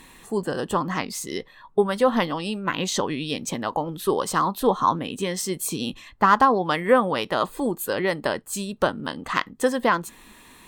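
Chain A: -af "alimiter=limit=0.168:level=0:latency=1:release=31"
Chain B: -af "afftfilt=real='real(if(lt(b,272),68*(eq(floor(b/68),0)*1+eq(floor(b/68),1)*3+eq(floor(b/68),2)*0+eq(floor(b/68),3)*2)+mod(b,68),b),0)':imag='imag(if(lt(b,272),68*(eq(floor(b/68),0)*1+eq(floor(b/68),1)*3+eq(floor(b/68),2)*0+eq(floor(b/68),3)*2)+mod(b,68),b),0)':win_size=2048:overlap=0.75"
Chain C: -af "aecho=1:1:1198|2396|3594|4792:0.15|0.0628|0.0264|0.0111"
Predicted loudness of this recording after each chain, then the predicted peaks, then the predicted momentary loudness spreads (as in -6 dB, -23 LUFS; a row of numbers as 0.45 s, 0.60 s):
-28.0 LUFS, -21.0 LUFS, -24.0 LUFS; -15.5 dBFS, -4.5 dBFS, -4.5 dBFS; 6 LU, 10 LU, 10 LU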